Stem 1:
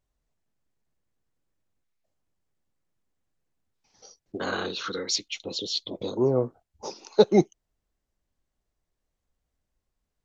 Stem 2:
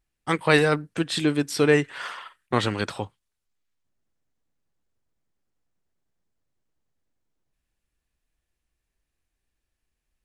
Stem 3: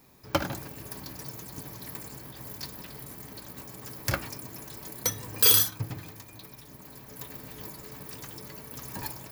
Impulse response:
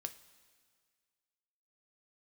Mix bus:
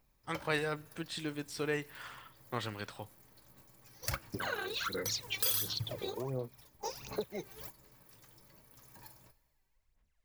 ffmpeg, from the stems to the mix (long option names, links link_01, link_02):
-filter_complex "[0:a]equalizer=frequency=2100:width_type=o:width=0.77:gain=8,volume=-5dB,asplit=2[link_01][link_02];[1:a]volume=-15.5dB,asplit=2[link_03][link_04];[link_04]volume=-8dB[link_05];[2:a]volume=-8.5dB,asplit=2[link_06][link_07];[link_07]volume=-7.5dB[link_08];[link_02]apad=whole_len=410933[link_09];[link_06][link_09]sidechaingate=range=-27dB:threshold=-58dB:ratio=16:detection=peak[link_10];[link_01][link_10]amix=inputs=2:normalize=0,aphaser=in_gain=1:out_gain=1:delay=2.6:decay=0.75:speed=1.4:type=sinusoidal,acompressor=threshold=-33dB:ratio=8,volume=0dB[link_11];[3:a]atrim=start_sample=2205[link_12];[link_05][link_08]amix=inputs=2:normalize=0[link_13];[link_13][link_12]afir=irnorm=-1:irlink=0[link_14];[link_03][link_11][link_14]amix=inputs=3:normalize=0,equalizer=frequency=280:width=1.1:gain=-4.5"